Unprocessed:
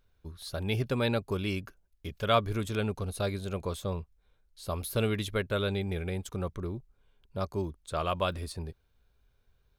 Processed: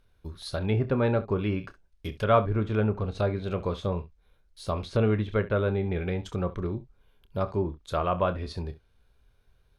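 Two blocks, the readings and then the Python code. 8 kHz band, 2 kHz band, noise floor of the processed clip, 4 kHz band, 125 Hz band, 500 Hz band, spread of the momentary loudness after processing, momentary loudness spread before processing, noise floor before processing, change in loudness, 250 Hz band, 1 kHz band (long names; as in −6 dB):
can't be measured, +0.5 dB, −65 dBFS, −5.0 dB, +5.0 dB, +5.0 dB, 13 LU, 14 LU, −71 dBFS, +4.0 dB, +4.5 dB, +3.5 dB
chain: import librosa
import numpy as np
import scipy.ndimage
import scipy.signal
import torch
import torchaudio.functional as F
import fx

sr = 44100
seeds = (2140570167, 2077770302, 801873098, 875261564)

y = np.repeat(scipy.signal.resample_poly(x, 1, 3), 3)[:len(x)]
y = fx.room_early_taps(y, sr, ms=(28, 67), db=(-11.5, -17.0))
y = fx.env_lowpass_down(y, sr, base_hz=1500.0, full_db=-26.5)
y = y * librosa.db_to_amplitude(4.5)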